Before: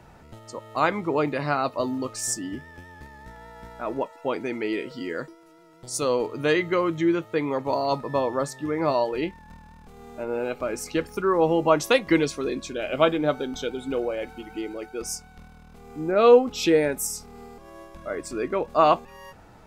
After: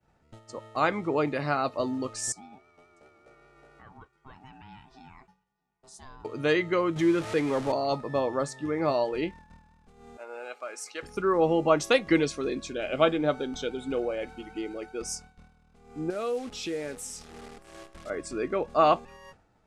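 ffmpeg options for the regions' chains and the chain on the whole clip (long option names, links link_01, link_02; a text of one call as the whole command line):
ffmpeg -i in.wav -filter_complex "[0:a]asettb=1/sr,asplit=3[link_01][link_02][link_03];[link_01]atrim=end=2.324[link_04];[link_02]atrim=start=2.32:end=6.25,asetpts=PTS-STARTPTS,afade=type=in:duration=0.004:curve=qsin,afade=type=out:start_time=3.926:duration=0.004:curve=qsin,acompressor=threshold=-39dB:ratio=5:attack=3.2:release=140:knee=1:detection=peak,aeval=exprs='val(0)*sin(2*PI*520*n/s)':channel_layout=same,aecho=1:1:645:0.133,atrim=end_sample=173313[link_05];[link_03]atrim=start=6.246[link_06];[link_04][link_05]acrossfade=duration=0.004:curve1=hsin:curve2=qsin[link_07];[link_07][link_06]acrossfade=duration=0.004:curve1=qsin:curve2=hsin,asettb=1/sr,asplit=3[link_08][link_09][link_10];[link_08]atrim=end=6.964[link_11];[link_09]atrim=start=6.96:end=7.72,asetpts=PTS-STARTPTS,afade=type=in:duration=0.004:curve=qsin,afade=type=out:start_time=0.756:duration=0.004:curve=qsin,aeval=exprs='val(0)+0.5*0.0299*sgn(val(0))':channel_layout=same,acompressor=mode=upward:threshold=-30dB:ratio=2.5:attack=3.2:release=140:knee=2.83:detection=peak[link_12];[link_10]atrim=start=7.716[link_13];[link_11][link_12]acrossfade=duration=0.004:curve1=hsin:curve2=qsin[link_14];[link_14][link_13]acrossfade=duration=0.004:curve1=qsin:curve2=hsin,asettb=1/sr,asplit=3[link_15][link_16][link_17];[link_15]atrim=end=10.174[link_18];[link_16]atrim=start=10.17:end=11.03,asetpts=PTS-STARTPTS,afade=type=in:duration=0.004:curve=qsin,afade=type=out:start_time=0.856:duration=0.004:curve=qsin,highpass=860,equalizer=frequency=2800:width_type=o:width=2:gain=-3.5[link_19];[link_17]atrim=start=11.026[link_20];[link_18][link_19]acrossfade=duration=0.004:curve1=hsin:curve2=qsin[link_21];[link_21][link_20]acrossfade=duration=0.004:curve1=qsin:curve2=hsin,asettb=1/sr,asplit=3[link_22][link_23][link_24];[link_22]atrim=end=16.104[link_25];[link_23]atrim=start=16.1:end=18.1,asetpts=PTS-STARTPTS,afade=type=in:duration=0.004:curve=qsin,afade=type=out:start_time=1.996:duration=0.004:curve=qsin,acompressor=threshold=-36dB:ratio=2:attack=3.2:release=140:knee=1:detection=peak,acrusher=bits=8:dc=4:mix=0:aa=0.000001,aecho=1:1:630:0.0708,atrim=end_sample=88200[link_26];[link_24]atrim=start=18.096[link_27];[link_25][link_26]acrossfade=duration=0.004:curve1=hsin:curve2=qsin[link_28];[link_28][link_27]acrossfade=duration=0.004:curve1=qsin:curve2=hsin,agate=range=-33dB:threshold=-40dB:ratio=3:detection=peak,lowpass=frequency=10000:width=0.5412,lowpass=frequency=10000:width=1.3066,bandreject=frequency=980:width=13,volume=-2.5dB" out.wav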